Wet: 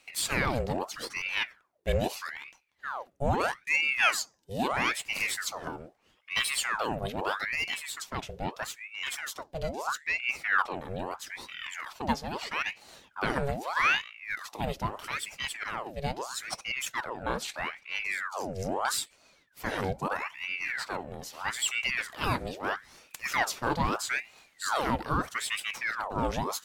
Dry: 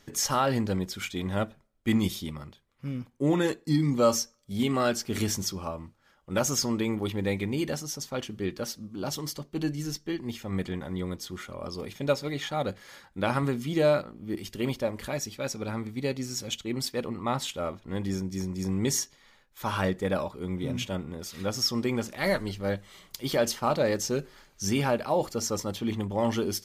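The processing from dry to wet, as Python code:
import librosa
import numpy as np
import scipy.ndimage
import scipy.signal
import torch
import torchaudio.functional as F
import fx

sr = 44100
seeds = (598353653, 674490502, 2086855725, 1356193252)

y = fx.low_shelf(x, sr, hz=220.0, db=12.0, at=(9.87, 10.67))
y = fx.spec_box(y, sr, start_s=19.8, length_s=0.41, low_hz=540.0, high_hz=3700.0, gain_db=-6)
y = fx.ring_lfo(y, sr, carrier_hz=1400.0, swing_pct=80, hz=0.78)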